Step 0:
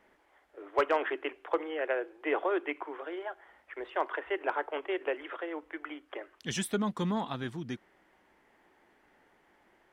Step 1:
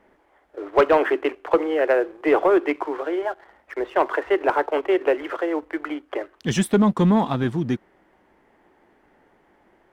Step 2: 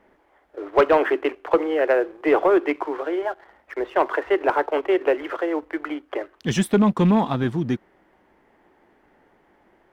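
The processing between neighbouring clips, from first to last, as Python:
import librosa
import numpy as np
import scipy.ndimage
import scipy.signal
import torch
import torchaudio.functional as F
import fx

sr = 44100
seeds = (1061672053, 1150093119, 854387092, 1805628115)

y1 = fx.tilt_shelf(x, sr, db=5.0, hz=1300.0)
y1 = fx.leveller(y1, sr, passes=1)
y1 = y1 * librosa.db_to_amplitude(6.5)
y2 = fx.rattle_buzz(y1, sr, strikes_db=-21.0, level_db=-31.0)
y2 = fx.peak_eq(y2, sr, hz=8400.0, db=-2.5, octaves=0.77)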